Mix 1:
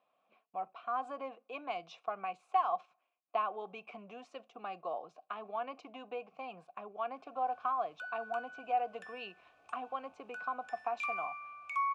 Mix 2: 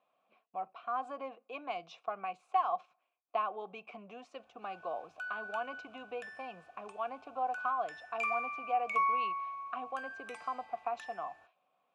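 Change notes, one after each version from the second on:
background: entry −2.80 s
reverb: on, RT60 2.2 s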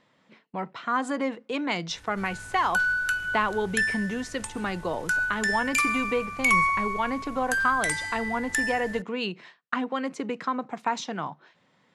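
background: entry −2.45 s
master: remove formant filter a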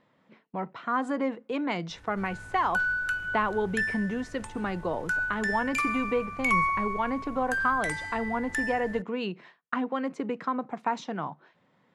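master: add high-shelf EQ 2,700 Hz −12 dB

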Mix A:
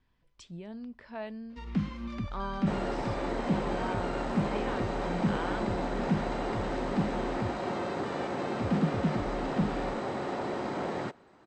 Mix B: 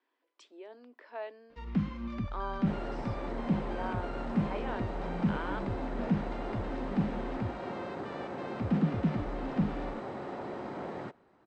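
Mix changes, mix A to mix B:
speech: add Butterworth high-pass 280 Hz 72 dB per octave
second sound −5.5 dB
master: add high-shelf EQ 4,100 Hz −11 dB

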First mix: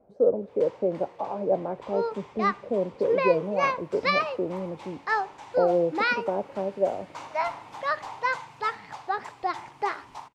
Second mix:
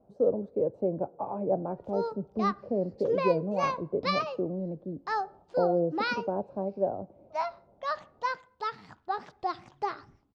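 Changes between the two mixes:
first sound: muted
master: add octave-band graphic EQ 125/500/2,000 Hz +4/−4/−11 dB

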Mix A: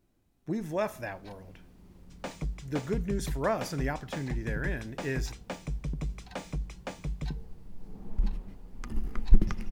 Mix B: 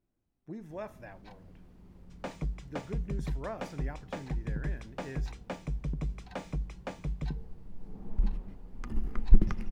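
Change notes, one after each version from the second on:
speech −10.0 dB
master: add high-shelf EQ 3,400 Hz −8.5 dB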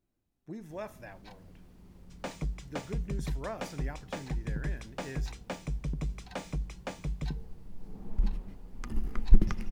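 master: add high-shelf EQ 3,400 Hz +8.5 dB

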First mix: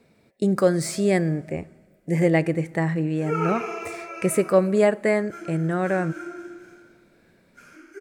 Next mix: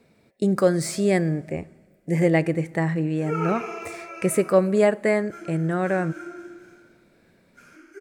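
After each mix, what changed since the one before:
background: send −11.0 dB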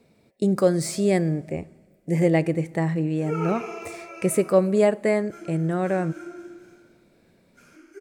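master: add parametric band 1,600 Hz −5.5 dB 0.89 octaves

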